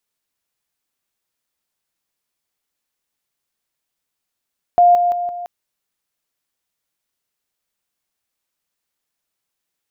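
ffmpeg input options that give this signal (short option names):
-f lavfi -i "aevalsrc='pow(10,(-7-6*floor(t/0.17))/20)*sin(2*PI*704*t)':d=0.68:s=44100"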